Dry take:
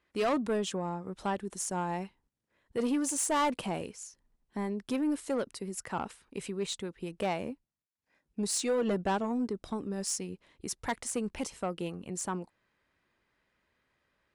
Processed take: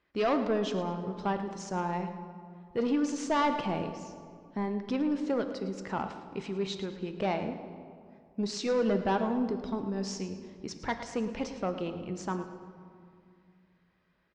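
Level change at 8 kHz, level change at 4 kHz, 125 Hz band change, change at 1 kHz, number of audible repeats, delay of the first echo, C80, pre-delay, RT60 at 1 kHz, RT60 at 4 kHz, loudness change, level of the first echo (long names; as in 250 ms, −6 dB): −11.0 dB, −0.5 dB, +3.0 dB, +2.0 dB, 2, 109 ms, 9.0 dB, 5 ms, 2.2 s, 1.2 s, +1.0 dB, −14.0 dB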